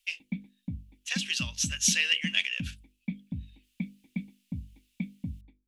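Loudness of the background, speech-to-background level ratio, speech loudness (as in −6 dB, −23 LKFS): −40.0 LKFS, 12.5 dB, −27.5 LKFS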